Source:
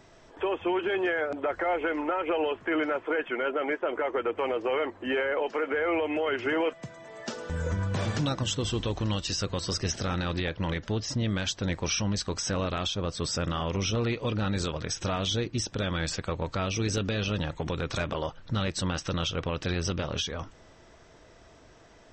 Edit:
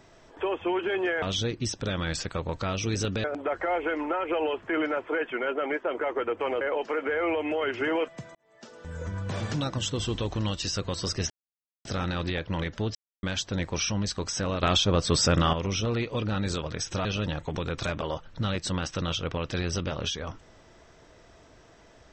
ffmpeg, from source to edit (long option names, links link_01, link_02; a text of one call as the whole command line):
ffmpeg -i in.wav -filter_complex "[0:a]asplit=11[link_01][link_02][link_03][link_04][link_05][link_06][link_07][link_08][link_09][link_10][link_11];[link_01]atrim=end=1.222[link_12];[link_02]atrim=start=15.148:end=17.172[link_13];[link_03]atrim=start=1.218:end=4.592[link_14];[link_04]atrim=start=5.258:end=7,asetpts=PTS-STARTPTS,afade=type=out:start_time=1.738:duration=0.004:curve=hsin[link_15];[link_05]atrim=start=7:end=9.95,asetpts=PTS-STARTPTS,afade=type=in:duration=1.89:curve=qsin,afade=type=out:start_time=2.946:duration=0.004:curve=hsin,apad=pad_dur=0.55[link_16];[link_06]atrim=start=9.95:end=11.05,asetpts=PTS-STARTPTS,afade=type=in:duration=0.004:curve=hsin,afade=type=out:start_time=1.096:duration=0.004:curve=hsin[link_17];[link_07]atrim=start=11.05:end=11.33,asetpts=PTS-STARTPTS,volume=0[link_18];[link_08]atrim=start=11.33:end=12.732,asetpts=PTS-STARTPTS,afade=type=in:duration=0.004:curve=hsin[link_19];[link_09]atrim=start=12.728:end=13.632,asetpts=PTS-STARTPTS,volume=7.5dB[link_20];[link_10]atrim=start=13.628:end=15.152[link_21];[link_11]atrim=start=17.168[link_22];[link_12][link_13]acrossfade=duration=0.004:curve1=hsin:curve2=hsin[link_23];[link_23][link_14]acrossfade=duration=0.004:curve1=hsin:curve2=hsin[link_24];[link_15][link_16][link_17][link_18][link_19]concat=n=5:v=0:a=1[link_25];[link_24][link_25]acrossfade=duration=0.004:curve1=hsin:curve2=hsin[link_26];[link_26][link_20]acrossfade=duration=0.004:curve1=hsin:curve2=hsin[link_27];[link_27][link_21]acrossfade=duration=0.004:curve1=hsin:curve2=hsin[link_28];[link_28][link_22]acrossfade=duration=0.004:curve1=hsin:curve2=hsin" out.wav